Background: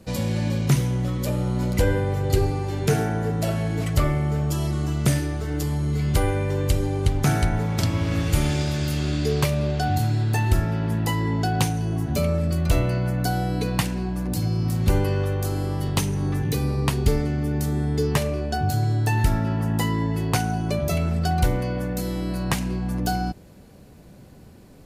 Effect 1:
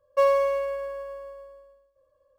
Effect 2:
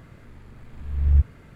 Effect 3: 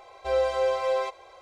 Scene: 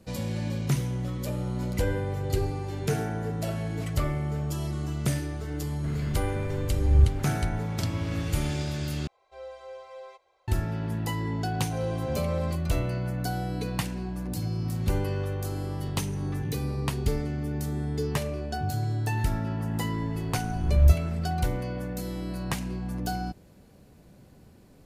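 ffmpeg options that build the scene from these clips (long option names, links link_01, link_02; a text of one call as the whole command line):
ffmpeg -i bed.wav -i cue0.wav -i cue1.wav -i cue2.wav -filter_complex "[2:a]asplit=2[link_01][link_02];[3:a]asplit=2[link_03][link_04];[0:a]volume=-6.5dB[link_05];[link_01]acompressor=mode=upward:threshold=-27dB:ratio=2.5:attack=3.2:release=140:knee=2.83:detection=peak[link_06];[link_05]asplit=2[link_07][link_08];[link_07]atrim=end=9.074[link_09];[link_03]atrim=end=1.41,asetpts=PTS-STARTPTS,volume=-18dB[link_10];[link_08]atrim=start=10.476[link_11];[link_06]atrim=end=1.55,asetpts=PTS-STARTPTS,volume=-1dB,afade=type=in:duration=0.004:curve=hsin,afade=type=out:start_time=1.546:duration=0.004:curve=hsin,adelay=5840[link_12];[link_04]atrim=end=1.41,asetpts=PTS-STARTPTS,volume=-9.5dB,afade=type=in:duration=0.004:curve=hsin,afade=type=out:start_time=1.406:duration=0.004:curve=hsin,adelay=505386S[link_13];[link_02]atrim=end=1.55,asetpts=PTS-STARTPTS,volume=-0.5dB,afade=type=in:duration=0.004:curve=hsin,afade=type=out:start_time=1.546:duration=0.004:curve=hsin,adelay=19710[link_14];[link_09][link_10]acrossfade=duration=0.004:curve1=hsin:curve2=hsin[link_15];[link_15][link_11]acrossfade=duration=0.004:curve1=hsin:curve2=hsin[link_16];[link_16][link_12][link_13][link_14]amix=inputs=4:normalize=0" out.wav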